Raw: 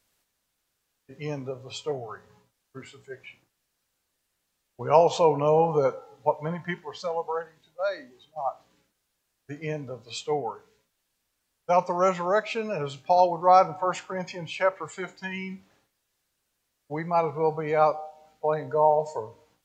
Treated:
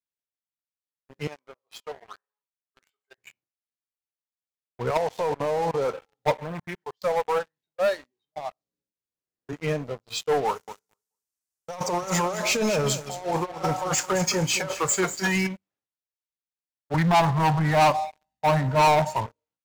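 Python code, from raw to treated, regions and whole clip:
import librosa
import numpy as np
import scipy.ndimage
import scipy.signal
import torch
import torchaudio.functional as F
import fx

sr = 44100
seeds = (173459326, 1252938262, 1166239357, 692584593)

y = fx.chain(x, sr, fx.highpass(hz=840.0, slope=12),
    fx.high_shelf(hz=2800.0, db=-8.0), at=(1.27, 3.18))
y = fx.chain(y, sr, fx.low_shelf(hz=310.0, db=-4.0),
    fx.level_steps(step_db=15), at=(4.9, 5.9))
y = fx.chain(y, sr, fx.law_mismatch(coded='mu'),
    fx.level_steps(step_db=18),
    fx.doppler_dist(depth_ms=0.18), at=(6.42, 7.02))
y = fx.chain(y, sr, fx.band_shelf(hz=1500.0, db=-8.5, octaves=2.6),
    fx.band_squash(depth_pct=70), at=(8.38, 9.53))
y = fx.chain(y, sr, fx.high_shelf_res(hz=4600.0, db=10.0, q=1.5),
    fx.over_compress(threshold_db=-32.0, ratio=-1.0),
    fx.echo_feedback(ms=216, feedback_pct=23, wet_db=-11), at=(10.46, 15.47))
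y = fx.chain(y, sr, fx.low_shelf(hz=170.0, db=9.5),
    fx.comb(ms=1.1, depth=0.88), at=(16.94, 19.26))
y = fx.highpass(y, sr, hz=54.0, slope=6)
y = fx.leveller(y, sr, passes=5)
y = fx.upward_expand(y, sr, threshold_db=-27.0, expansion=1.5)
y = y * 10.0 ** (-8.5 / 20.0)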